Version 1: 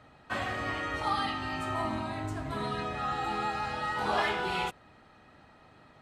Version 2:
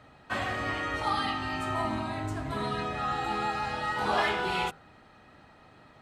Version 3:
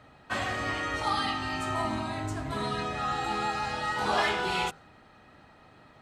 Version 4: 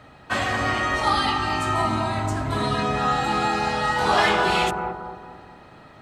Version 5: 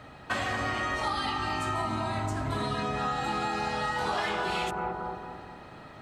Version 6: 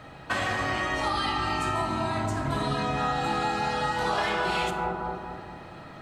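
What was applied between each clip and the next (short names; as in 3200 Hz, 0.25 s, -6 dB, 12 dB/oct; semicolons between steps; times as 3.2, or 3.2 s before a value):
de-hum 79.32 Hz, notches 19; gain +2 dB
dynamic EQ 6600 Hz, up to +6 dB, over -54 dBFS, Q 0.91
analogue delay 0.223 s, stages 2048, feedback 44%, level -4.5 dB; gain +7 dB
compressor 5:1, threshold -28 dBFS, peak gain reduction 12 dB
shoebox room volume 810 m³, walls mixed, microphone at 0.7 m; gain +2 dB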